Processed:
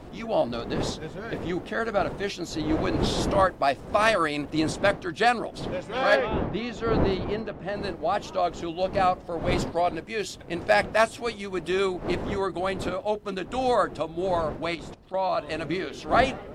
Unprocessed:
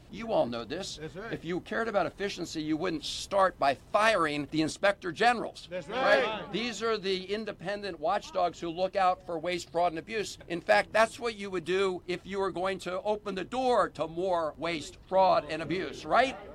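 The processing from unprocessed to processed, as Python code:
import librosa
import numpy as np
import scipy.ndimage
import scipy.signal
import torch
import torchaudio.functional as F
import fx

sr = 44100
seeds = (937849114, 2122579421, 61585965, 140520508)

y = fx.dmg_wind(x, sr, seeds[0], corner_hz=460.0, level_db=-37.0)
y = fx.lowpass(y, sr, hz=fx.line((6.15, 1400.0), (7.75, 2300.0)), slope=6, at=(6.15, 7.75), fade=0.02)
y = fx.level_steps(y, sr, step_db=14, at=(14.74, 15.39), fade=0.02)
y = y * librosa.db_to_amplitude(3.0)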